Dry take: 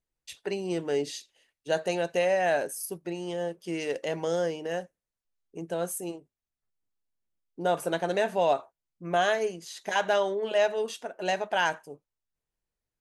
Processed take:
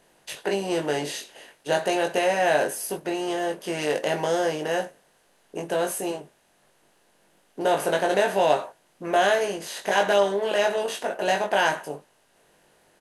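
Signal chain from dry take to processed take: per-bin compression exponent 0.6; doubler 20 ms -3.5 dB

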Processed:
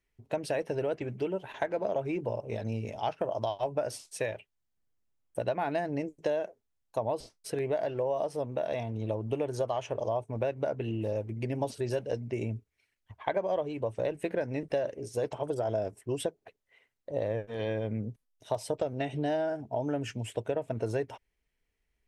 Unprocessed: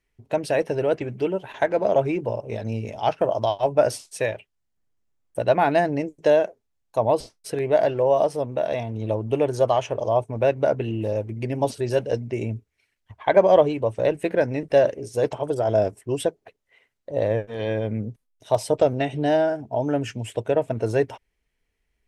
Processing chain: compressor 6:1, threshold -22 dBFS, peak gain reduction 12 dB; gain -5 dB

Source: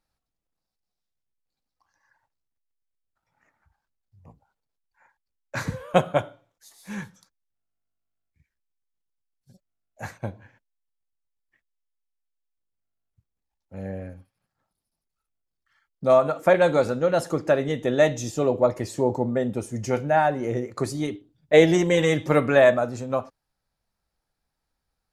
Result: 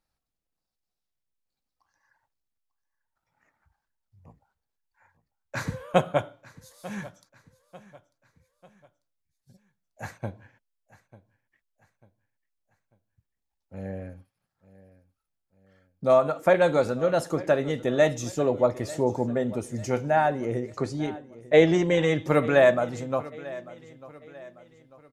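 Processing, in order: 20.45–22.25 air absorption 83 m; feedback echo 0.894 s, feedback 42%, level -19 dB; gain -2 dB

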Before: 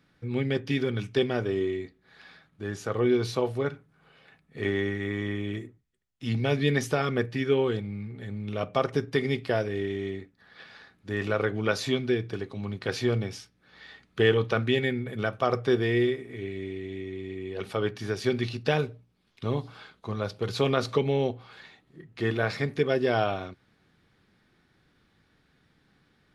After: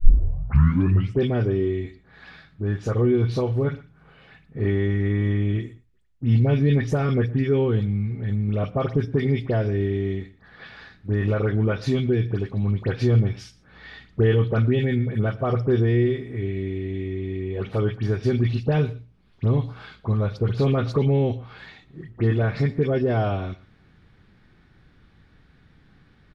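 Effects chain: tape start at the beginning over 1.13 s; dispersion highs, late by 72 ms, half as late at 2200 Hz; in parallel at -1.5 dB: limiter -21.5 dBFS, peak gain reduction 10.5 dB; on the sum: RIAA curve playback; on a send: echo 0.119 s -21.5 dB; on the sum: mismatched tape noise reduction encoder only; gain -5 dB

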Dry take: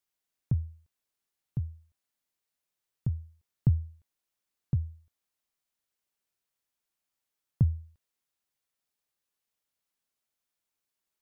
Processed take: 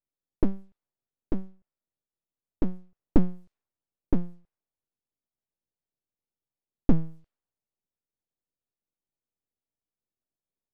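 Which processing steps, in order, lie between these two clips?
speed glide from 121% -> 88%; low-pass opened by the level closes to 310 Hz, open at -29.5 dBFS; full-wave rectifier; gain +7 dB

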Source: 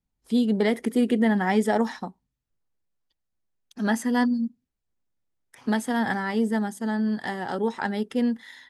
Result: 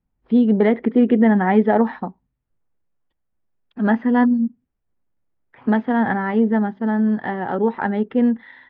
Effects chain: Gaussian blur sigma 3.7 samples; gain +7 dB

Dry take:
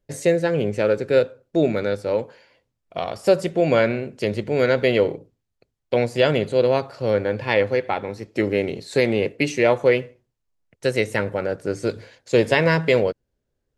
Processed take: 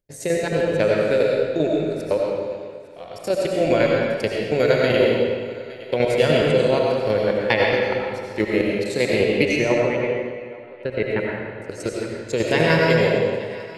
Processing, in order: level quantiser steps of 21 dB; high shelf 5200 Hz +6.5 dB; thinning echo 0.863 s, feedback 29%, level -19 dB; tremolo saw down 10 Hz, depth 60%; 9.59–11.62 air absorption 460 m; digital reverb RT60 1.7 s, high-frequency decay 0.85×, pre-delay 50 ms, DRR -2.5 dB; gain +4 dB

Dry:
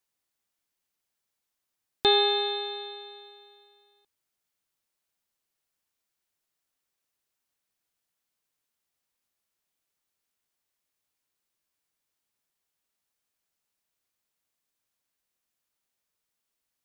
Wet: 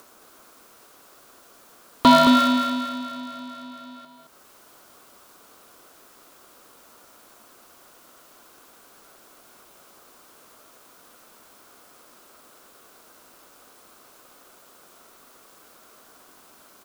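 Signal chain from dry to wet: cycle switcher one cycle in 2, inverted; band shelf 830 Hz +14 dB 1.2 oct; upward compressor, threshold -28 dBFS; ring modulator 360 Hz; on a send: echo 0.22 s -6.5 dB; on the sum: gain +2 dB

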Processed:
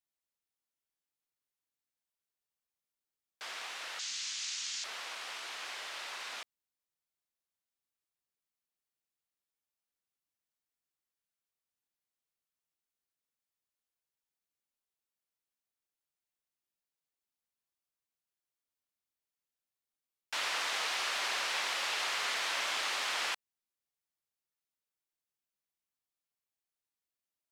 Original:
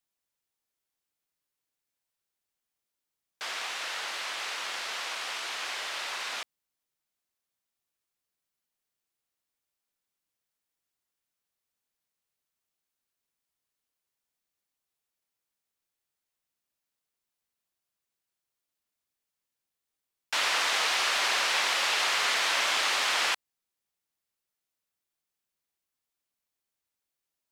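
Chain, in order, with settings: 3.99–4.84 EQ curve 230 Hz 0 dB, 410 Hz -26 dB, 6800 Hz +14 dB, 13000 Hz -15 dB; gain -7.5 dB

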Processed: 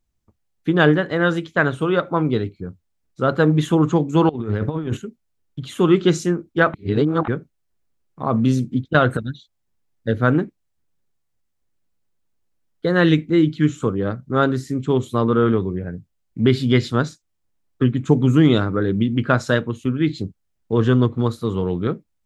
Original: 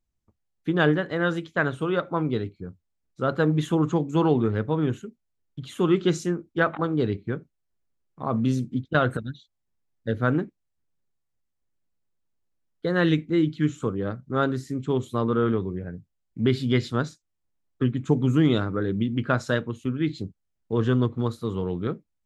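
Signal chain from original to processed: 4.29–4.97 negative-ratio compressor -28 dBFS, ratio -0.5; 6.74–7.28 reverse; gain +6 dB

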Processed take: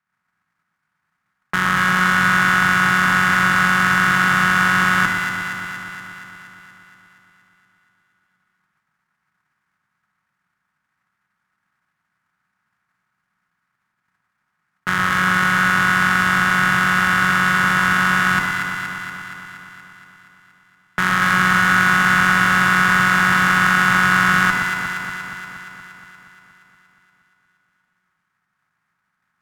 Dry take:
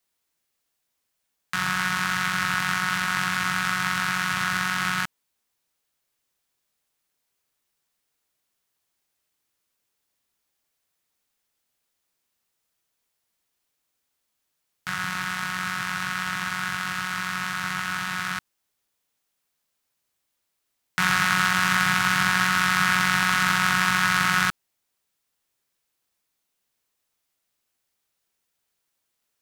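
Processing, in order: per-bin compression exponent 0.2; gate -25 dBFS, range -50 dB; resonant high shelf 2400 Hz -6.5 dB, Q 1.5; added harmonics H 6 -24 dB, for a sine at -2 dBFS; echo with dull and thin repeats by turns 0.118 s, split 1300 Hz, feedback 81%, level -2.5 dB; gain -1 dB

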